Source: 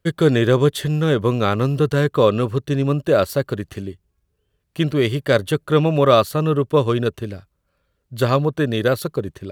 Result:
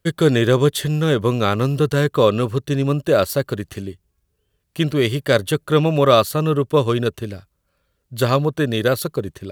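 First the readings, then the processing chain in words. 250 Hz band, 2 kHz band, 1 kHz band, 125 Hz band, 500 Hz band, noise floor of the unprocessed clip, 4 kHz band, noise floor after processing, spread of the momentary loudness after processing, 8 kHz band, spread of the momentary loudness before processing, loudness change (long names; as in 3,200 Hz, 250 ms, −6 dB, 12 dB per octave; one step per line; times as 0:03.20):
0.0 dB, +1.0 dB, +0.5 dB, 0.0 dB, 0.0 dB, −72 dBFS, +2.5 dB, −71 dBFS, 12 LU, +5.0 dB, 12 LU, 0.0 dB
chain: high-shelf EQ 4,000 Hz +6 dB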